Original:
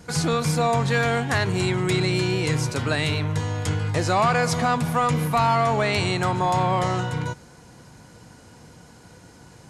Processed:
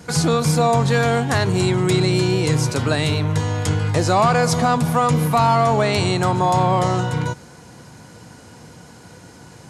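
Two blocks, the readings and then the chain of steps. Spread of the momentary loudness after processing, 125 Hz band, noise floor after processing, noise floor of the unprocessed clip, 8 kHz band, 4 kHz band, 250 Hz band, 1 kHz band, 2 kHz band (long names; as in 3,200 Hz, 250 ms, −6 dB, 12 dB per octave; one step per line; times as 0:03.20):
5 LU, +5.0 dB, −43 dBFS, −48 dBFS, +5.0 dB, +3.0 dB, +5.5 dB, +4.0 dB, +0.5 dB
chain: high-pass filter 71 Hz
dynamic equaliser 2,100 Hz, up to −6 dB, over −37 dBFS, Q 0.96
level +5.5 dB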